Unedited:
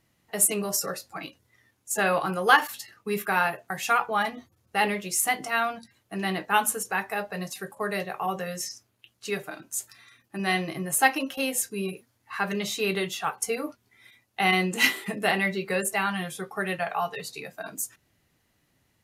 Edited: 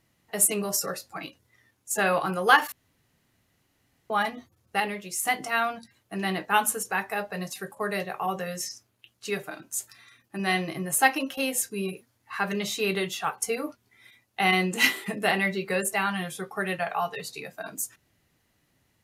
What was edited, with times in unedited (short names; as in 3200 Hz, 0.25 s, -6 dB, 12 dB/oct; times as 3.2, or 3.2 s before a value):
2.72–4.1 room tone
4.8–5.25 gain -5 dB